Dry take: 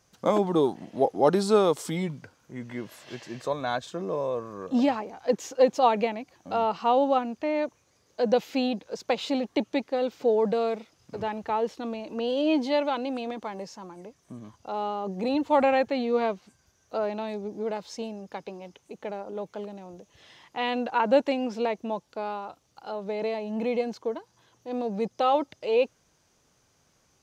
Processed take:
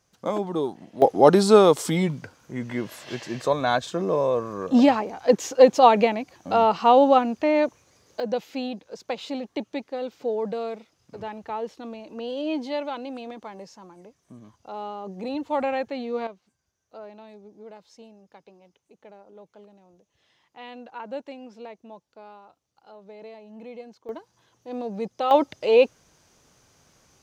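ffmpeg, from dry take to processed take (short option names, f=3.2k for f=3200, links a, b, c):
-af "asetnsamples=n=441:p=0,asendcmd='1.02 volume volume 6.5dB;8.2 volume volume -4dB;16.27 volume volume -13dB;24.09 volume volume -1.5dB;25.31 volume volume 6.5dB',volume=-3.5dB"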